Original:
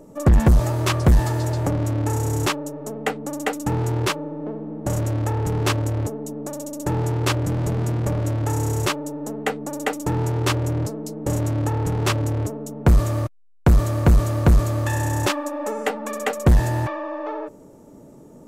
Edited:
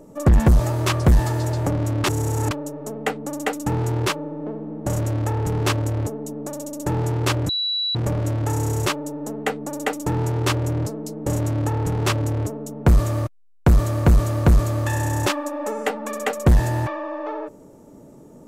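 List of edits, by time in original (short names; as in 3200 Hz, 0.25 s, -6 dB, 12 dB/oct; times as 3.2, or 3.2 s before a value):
2.04–2.51 reverse
7.49–7.95 bleep 3930 Hz -20.5 dBFS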